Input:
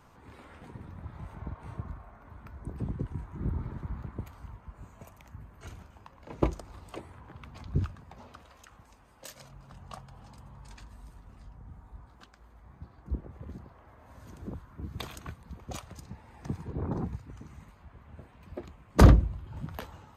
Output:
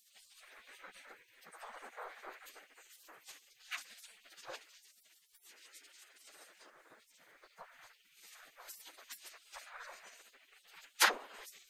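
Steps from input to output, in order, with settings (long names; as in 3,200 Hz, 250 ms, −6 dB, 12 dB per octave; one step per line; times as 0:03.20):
time stretch by phase vocoder 0.58×
gate on every frequency bin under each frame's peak −30 dB weak
level +13 dB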